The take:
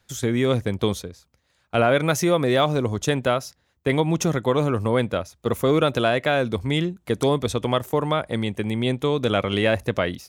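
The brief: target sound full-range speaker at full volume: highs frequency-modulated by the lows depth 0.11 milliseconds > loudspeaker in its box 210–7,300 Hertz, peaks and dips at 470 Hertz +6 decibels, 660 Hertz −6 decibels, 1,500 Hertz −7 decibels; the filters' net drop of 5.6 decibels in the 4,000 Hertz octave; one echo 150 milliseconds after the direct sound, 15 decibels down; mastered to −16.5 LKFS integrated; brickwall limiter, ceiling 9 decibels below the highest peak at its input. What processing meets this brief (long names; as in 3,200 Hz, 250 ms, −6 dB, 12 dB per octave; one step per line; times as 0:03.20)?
parametric band 4,000 Hz −7 dB
brickwall limiter −16 dBFS
single-tap delay 150 ms −15 dB
highs frequency-modulated by the lows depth 0.11 ms
loudspeaker in its box 210–7,300 Hz, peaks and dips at 470 Hz +6 dB, 660 Hz −6 dB, 1,500 Hz −7 dB
level +10.5 dB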